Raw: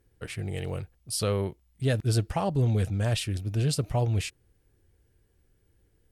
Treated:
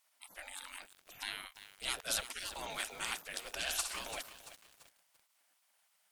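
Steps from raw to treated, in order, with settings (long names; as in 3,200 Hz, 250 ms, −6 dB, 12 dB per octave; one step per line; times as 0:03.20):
0:03.57–0:03.99: flutter between parallel walls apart 10.7 metres, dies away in 0.53 s
gate on every frequency bin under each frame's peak −30 dB weak
feedback echo at a low word length 339 ms, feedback 55%, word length 9 bits, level −11 dB
level +6.5 dB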